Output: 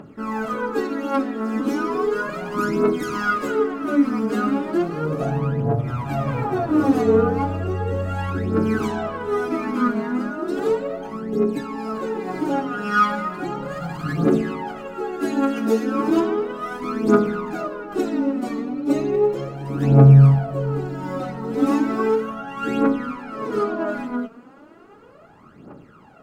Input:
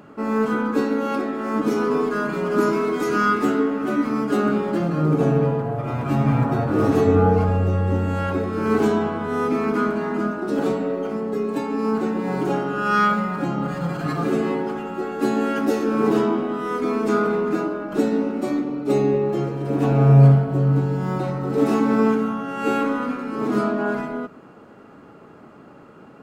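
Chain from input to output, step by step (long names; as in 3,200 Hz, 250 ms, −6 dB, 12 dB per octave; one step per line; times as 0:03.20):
0:22.40–0:23.85: high-shelf EQ 6,200 Hz −5.5 dB
phase shifter 0.35 Hz, delay 4.5 ms, feedback 72%
level −4 dB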